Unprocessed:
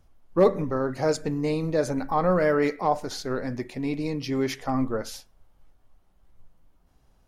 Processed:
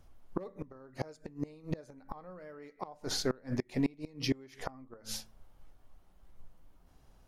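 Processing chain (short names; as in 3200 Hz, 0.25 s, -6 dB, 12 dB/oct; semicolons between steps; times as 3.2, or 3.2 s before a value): de-hum 54.72 Hz, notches 4; flipped gate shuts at -20 dBFS, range -28 dB; gain +1 dB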